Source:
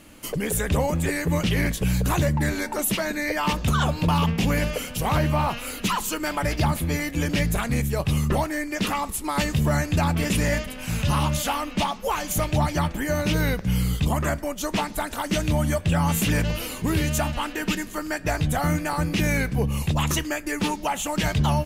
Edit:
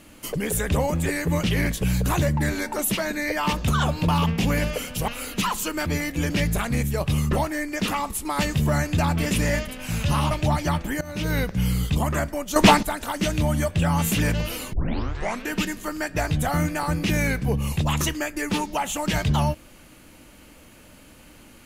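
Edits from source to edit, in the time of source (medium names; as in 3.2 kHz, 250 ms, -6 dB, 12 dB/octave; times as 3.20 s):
5.08–5.54 s: delete
6.32–6.85 s: delete
11.30–12.41 s: delete
13.11–13.49 s: fade in, from -19 dB
14.66–14.93 s: gain +11.5 dB
16.83 s: tape start 0.77 s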